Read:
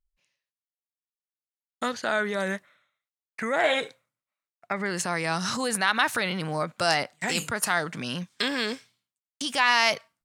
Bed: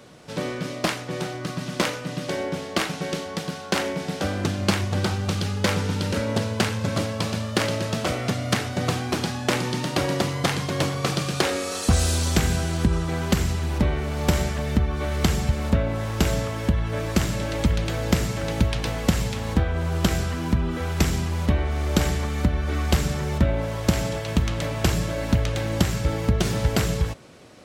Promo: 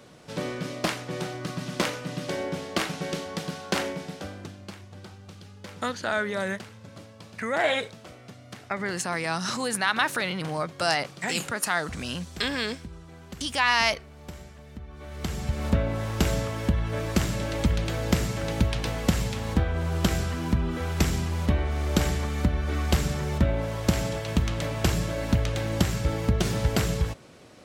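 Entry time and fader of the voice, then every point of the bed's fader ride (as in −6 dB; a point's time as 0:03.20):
4.00 s, −1.0 dB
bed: 0:03.82 −3 dB
0:04.72 −20.5 dB
0:14.78 −20.5 dB
0:15.66 −2.5 dB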